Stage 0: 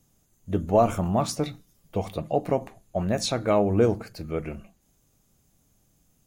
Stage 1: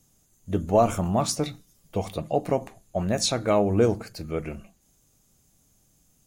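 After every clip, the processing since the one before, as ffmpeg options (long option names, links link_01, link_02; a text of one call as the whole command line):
ffmpeg -i in.wav -af "equalizer=frequency=7700:width_type=o:width=1.8:gain=5.5" out.wav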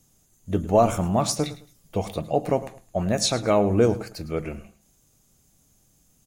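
ffmpeg -i in.wav -af "aecho=1:1:107|214:0.15|0.0374,volume=1.5dB" out.wav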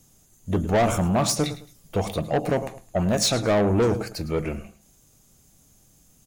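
ffmpeg -i in.wav -af "asoftclip=type=tanh:threshold=-20.5dB,volume=4.5dB" out.wav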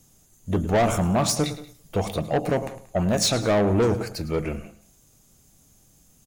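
ffmpeg -i in.wav -filter_complex "[0:a]asplit=2[link_01][link_02];[link_02]adelay=180.8,volume=-19dB,highshelf=frequency=4000:gain=-4.07[link_03];[link_01][link_03]amix=inputs=2:normalize=0" out.wav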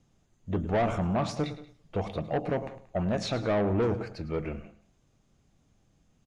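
ffmpeg -i in.wav -af "lowpass=3200,volume=-6dB" out.wav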